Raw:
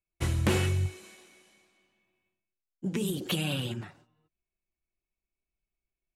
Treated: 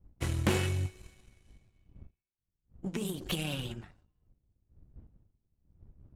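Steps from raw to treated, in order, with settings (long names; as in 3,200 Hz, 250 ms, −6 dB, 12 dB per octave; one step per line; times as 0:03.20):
wind on the microphone 85 Hz −47 dBFS
power curve on the samples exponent 1.4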